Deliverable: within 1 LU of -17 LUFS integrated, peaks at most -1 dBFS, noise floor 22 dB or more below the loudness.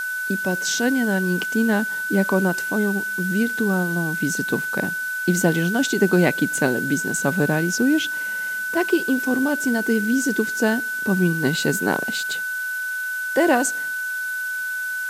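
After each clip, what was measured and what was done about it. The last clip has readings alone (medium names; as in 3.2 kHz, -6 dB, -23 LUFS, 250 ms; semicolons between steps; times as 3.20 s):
steady tone 1.5 kHz; tone level -24 dBFS; noise floor -27 dBFS; noise floor target -44 dBFS; loudness -21.5 LUFS; peak level -5.5 dBFS; loudness target -17.0 LUFS
-> band-stop 1.5 kHz, Q 30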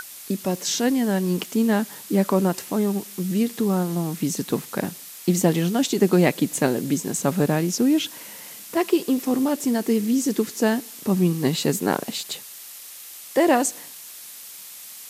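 steady tone not found; noise floor -41 dBFS; noise floor target -45 dBFS
-> noise print and reduce 6 dB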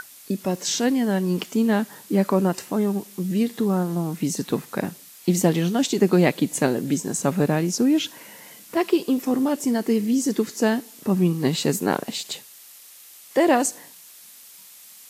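noise floor -47 dBFS; loudness -23.0 LUFS; peak level -5.5 dBFS; loudness target -17.0 LUFS
-> trim +6 dB; peak limiter -1 dBFS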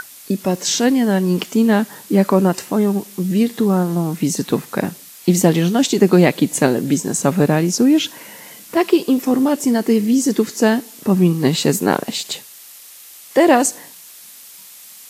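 loudness -17.0 LUFS; peak level -1.0 dBFS; noise floor -41 dBFS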